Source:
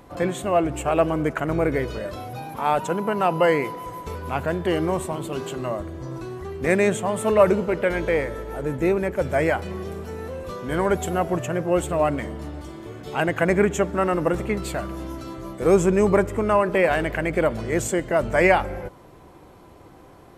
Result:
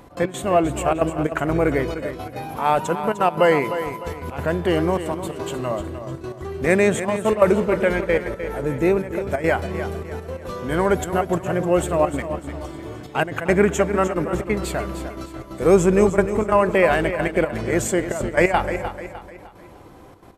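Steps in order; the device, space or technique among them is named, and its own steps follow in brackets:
trance gate with a delay (gate pattern "x.x.xxxxxxx." 178 BPM −12 dB; repeating echo 303 ms, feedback 40%, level −10.5 dB)
level +2.5 dB

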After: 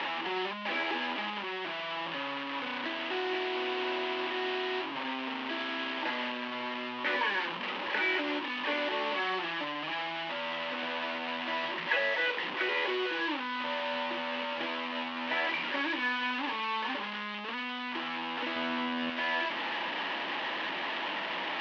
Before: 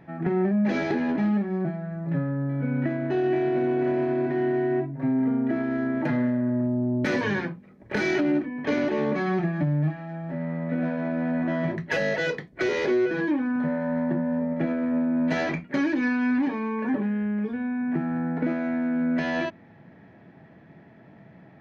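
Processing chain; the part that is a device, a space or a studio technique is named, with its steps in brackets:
digital answering machine (band-pass filter 380–3,300 Hz; linear delta modulator 32 kbit/s, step −26 dBFS; loudspeaker in its box 420–3,500 Hz, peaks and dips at 430 Hz −9 dB, 670 Hz −9 dB, 970 Hz +5 dB, 1,400 Hz −4 dB, 2,900 Hz +6 dB)
0:18.56–0:19.10: low-shelf EQ 480 Hz +9.5 dB

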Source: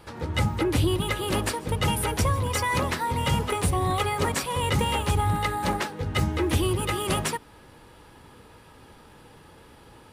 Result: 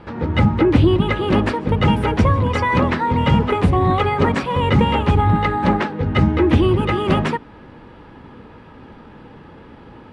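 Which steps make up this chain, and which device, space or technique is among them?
inside a cardboard box (low-pass filter 2,500 Hz 12 dB per octave; hollow resonant body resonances 220 Hz, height 7 dB, ringing for 20 ms)
level +7.5 dB

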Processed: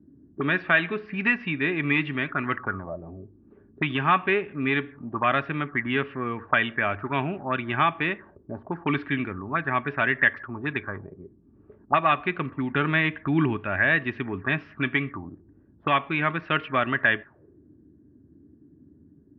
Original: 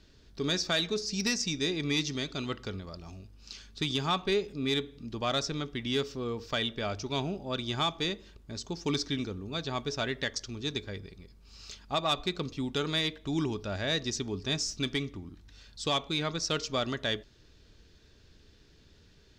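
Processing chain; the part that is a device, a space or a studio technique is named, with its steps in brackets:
0:12.71–0:13.57: low-shelf EQ 260 Hz +5.5 dB
envelope filter bass rig (envelope-controlled low-pass 250–2,800 Hz up, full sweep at −29.5 dBFS; loudspeaker in its box 90–2,100 Hz, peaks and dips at 110 Hz −4 dB, 200 Hz −4 dB, 470 Hz −9 dB, 1,100 Hz +4 dB, 1,700 Hz +8 dB)
level +6.5 dB

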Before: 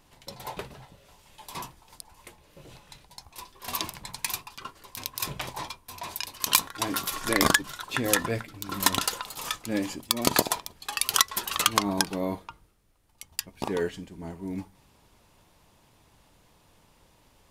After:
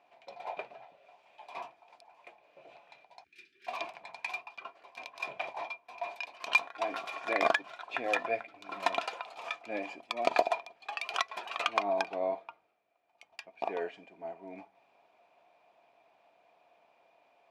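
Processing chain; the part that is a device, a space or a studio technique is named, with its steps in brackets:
tin-can telephone (band-pass filter 420–2,800 Hz; hollow resonant body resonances 690/2,400 Hz, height 17 dB, ringing for 35 ms)
0:03.24–0:03.67: elliptic band-stop filter 380–1,600 Hz, stop band 40 dB
level −7 dB

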